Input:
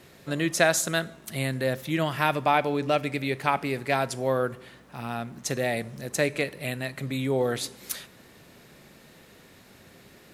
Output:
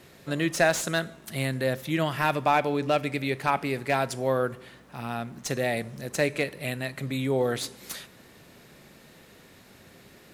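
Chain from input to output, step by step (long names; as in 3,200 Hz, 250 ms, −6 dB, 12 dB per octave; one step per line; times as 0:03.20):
slew-rate limiting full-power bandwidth 250 Hz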